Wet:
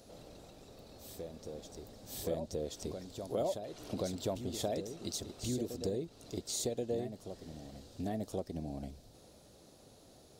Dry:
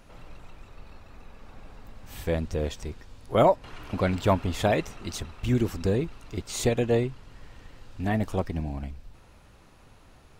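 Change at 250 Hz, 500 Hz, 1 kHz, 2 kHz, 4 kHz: -10.5 dB, -10.5 dB, -16.0 dB, -20.5 dB, -5.5 dB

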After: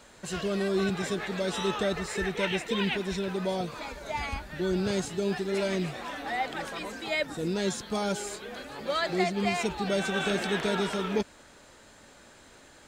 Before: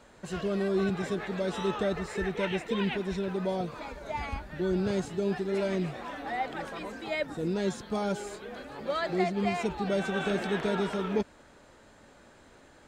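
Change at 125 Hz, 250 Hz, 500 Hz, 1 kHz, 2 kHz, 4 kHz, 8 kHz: 0.0 dB, 0.0 dB, +0.5 dB, +1.5 dB, +4.0 dB, +6.5 dB, +8.5 dB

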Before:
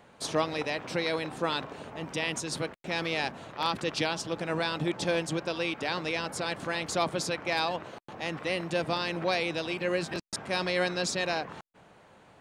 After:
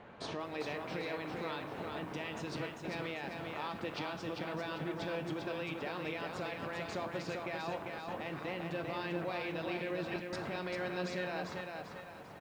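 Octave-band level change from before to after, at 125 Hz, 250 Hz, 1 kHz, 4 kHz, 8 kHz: -6.0 dB, -6.0 dB, -8.0 dB, -12.5 dB, -18.5 dB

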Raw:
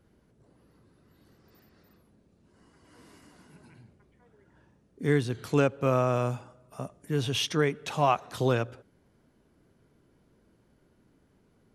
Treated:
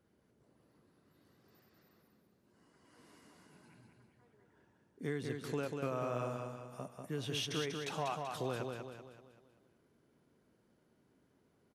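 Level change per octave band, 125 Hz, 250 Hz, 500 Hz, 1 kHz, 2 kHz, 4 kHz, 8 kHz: -13.0 dB, -11.5 dB, -11.5 dB, -11.5 dB, -10.5 dB, -8.0 dB, -7.5 dB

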